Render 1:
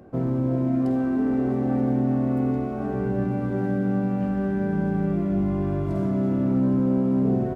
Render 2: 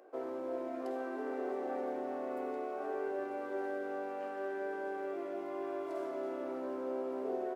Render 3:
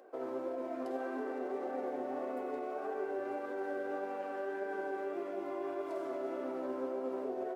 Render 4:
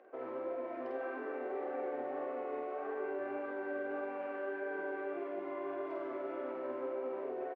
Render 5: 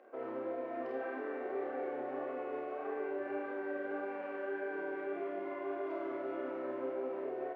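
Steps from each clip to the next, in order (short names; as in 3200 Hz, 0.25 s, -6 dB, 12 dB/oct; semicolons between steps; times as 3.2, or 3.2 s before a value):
inverse Chebyshev high-pass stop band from 190 Hz, stop band 40 dB; gain -5.5 dB
limiter -31.5 dBFS, peak gain reduction 5.5 dB; flange 1.7 Hz, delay 3.6 ms, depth 5.3 ms, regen +59%; gain +5.5 dB
synth low-pass 2300 Hz, resonance Q 1.7; doubler 48 ms -3.5 dB; gain -3.5 dB
flutter echo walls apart 5.2 m, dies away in 0.31 s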